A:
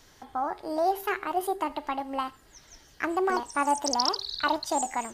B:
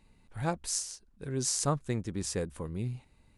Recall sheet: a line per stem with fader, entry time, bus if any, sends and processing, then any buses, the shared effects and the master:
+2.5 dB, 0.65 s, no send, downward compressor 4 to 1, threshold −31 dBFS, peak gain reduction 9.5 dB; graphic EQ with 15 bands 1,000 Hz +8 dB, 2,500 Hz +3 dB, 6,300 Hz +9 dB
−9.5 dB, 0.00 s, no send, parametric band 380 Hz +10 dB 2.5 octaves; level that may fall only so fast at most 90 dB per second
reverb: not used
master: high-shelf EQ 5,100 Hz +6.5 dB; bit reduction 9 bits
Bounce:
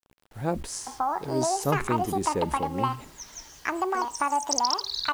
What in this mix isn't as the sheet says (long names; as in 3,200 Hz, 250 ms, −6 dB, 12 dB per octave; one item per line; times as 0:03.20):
stem B −9.5 dB → −3.5 dB
master: missing high-shelf EQ 5,100 Hz +6.5 dB